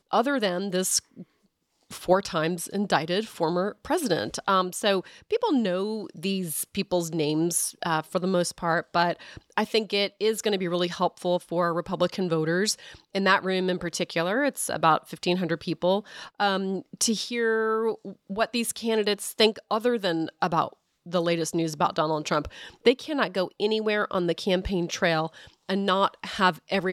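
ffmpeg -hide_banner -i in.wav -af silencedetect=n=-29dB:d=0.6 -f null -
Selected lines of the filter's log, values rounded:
silence_start: 0.99
silence_end: 1.92 | silence_duration: 0.94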